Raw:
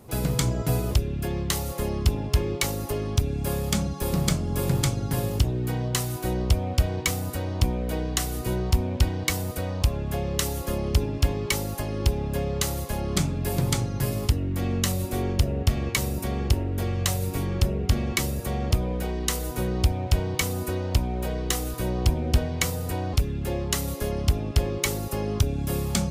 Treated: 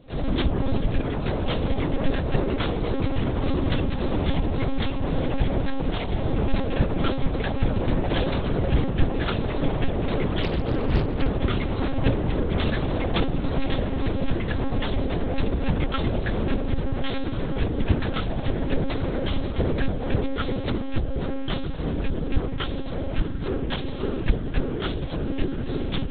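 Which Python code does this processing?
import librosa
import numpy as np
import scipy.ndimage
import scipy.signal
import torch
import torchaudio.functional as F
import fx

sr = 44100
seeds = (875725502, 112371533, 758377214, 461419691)

p1 = fx.partial_stretch(x, sr, pct=77)
p2 = fx.dynamic_eq(p1, sr, hz=2300.0, q=1.2, threshold_db=-45.0, ratio=4.0, max_db=-7)
p3 = fx.rider(p2, sr, range_db=10, speed_s=2.0)
p4 = p3 + fx.echo_diffused(p3, sr, ms=1488, feedback_pct=60, wet_db=-12.0, dry=0)
p5 = fx.echo_pitch(p4, sr, ms=84, semitones=4, count=3, db_per_echo=-3.0)
p6 = fx.lpc_monotone(p5, sr, seeds[0], pitch_hz=270.0, order=10)
p7 = fx.doppler_dist(p6, sr, depth_ms=0.85, at=(10.43, 11.28))
y = p7 * 10.0 ** (2.0 / 20.0)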